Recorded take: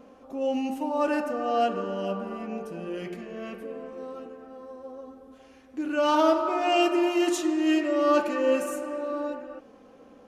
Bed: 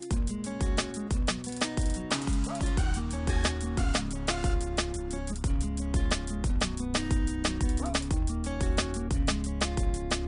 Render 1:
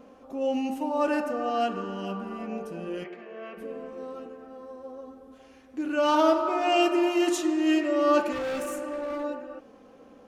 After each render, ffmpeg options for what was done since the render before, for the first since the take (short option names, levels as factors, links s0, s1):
-filter_complex "[0:a]asettb=1/sr,asplit=3[s0][s1][s2];[s0]atrim=end=1.494[s3];[s1]atrim=start=1.49:end=2.39,asetpts=PTS-STARTPTS,afade=t=in:d=0.004:c=qsin,afade=t=out:st=0.896:d=0.004:c=qsin,equalizer=f=550:w=4.7:g=-13.5[s4];[s2]atrim=start=2.386[s5];[s3][s4]acrossfade=d=0.004:c1=hsin:c2=qsin[s6];[s6][s5]acrossfade=d=0.004:c1=qsin:c2=hsin,asplit=3[s7][s8][s9];[s7]afade=t=out:st=3.03:d=0.02[s10];[s8]highpass=420,lowpass=2600,afade=t=in:st=3.03:d=0.02,afade=t=out:st=3.56:d=0.02[s11];[s9]afade=t=in:st=3.56:d=0.02[s12];[s10][s11][s12]amix=inputs=3:normalize=0,asettb=1/sr,asplit=3[s13][s14][s15];[s13]atrim=end=8.324[s16];[s14]atrim=start=8.32:end=9.24,asetpts=PTS-STARTPTS,afade=t=in:d=0.004:c=qsin,afade=t=out:st=0.916:d=0.004:c=qsin,volume=26.6,asoftclip=hard,volume=0.0376[s17];[s15]atrim=start=9.236[s18];[s16][s17]acrossfade=d=0.004:c1=hsin:c2=qsin[s19];[s19][s18]acrossfade=d=0.004:c1=qsin:c2=hsin"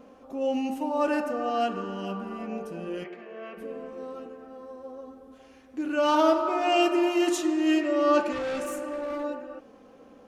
-filter_complex "[0:a]asettb=1/sr,asplit=3[s0][s1][s2];[s0]atrim=end=7.824[s3];[s1]atrim=start=7.82:end=8.66,asetpts=PTS-STARTPTS,afade=t=in:d=0.004:c=qsin,afade=t=out:st=0.836:d=0.004:c=qsin,lowpass=9000[s4];[s2]atrim=start=8.656[s5];[s3][s4]acrossfade=d=0.004:c1=hsin:c2=qsin[s6];[s6][s5]acrossfade=d=0.004:c1=qsin:c2=hsin"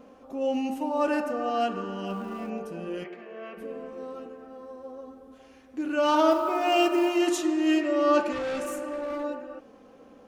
-filter_complex "[0:a]asettb=1/sr,asplit=3[s0][s1][s2];[s0]atrim=end=2.104[s3];[s1]atrim=start=2.1:end=2.5,asetpts=PTS-STARTPTS,afade=t=in:d=0.004:c=qsin,afade=t=out:st=0.396:d=0.004:c=qsin,aeval=exprs='val(0)+0.5*0.00398*sgn(val(0))':c=same[s4];[s2]atrim=start=2.496[s5];[s3][s4]acrossfade=d=0.004:c1=hsin:c2=qsin[s6];[s6][s5]acrossfade=d=0.004:c1=qsin:c2=hsin,asettb=1/sr,asplit=3[s7][s8][s9];[s7]atrim=end=6.314[s10];[s8]atrim=start=6.31:end=7.17,asetpts=PTS-STARTPTS,afade=t=in:d=0.004:c=qsin,afade=t=out:st=0.856:d=0.004:c=qsin,acrusher=bits=8:mode=log:mix=0:aa=0.000001[s11];[s9]atrim=start=7.166[s12];[s10][s11]acrossfade=d=0.004:c1=hsin:c2=qsin[s13];[s13][s12]acrossfade=d=0.004:c1=qsin:c2=hsin"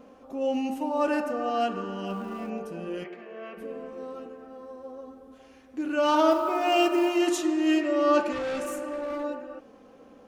-af anull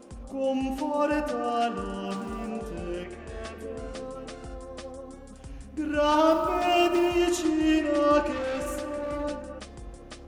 -filter_complex "[1:a]volume=0.188[s0];[0:a][s0]amix=inputs=2:normalize=0"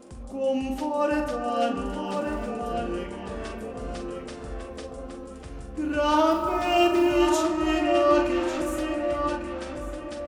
-filter_complex "[0:a]asplit=2[s0][s1];[s1]adelay=43,volume=0.398[s2];[s0][s2]amix=inputs=2:normalize=0,asplit=2[s3][s4];[s4]adelay=1148,lowpass=f=3000:p=1,volume=0.562,asplit=2[s5][s6];[s6]adelay=1148,lowpass=f=3000:p=1,volume=0.26,asplit=2[s7][s8];[s8]adelay=1148,lowpass=f=3000:p=1,volume=0.26[s9];[s3][s5][s7][s9]amix=inputs=4:normalize=0"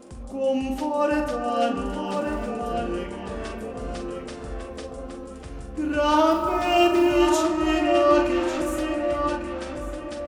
-af "volume=1.26"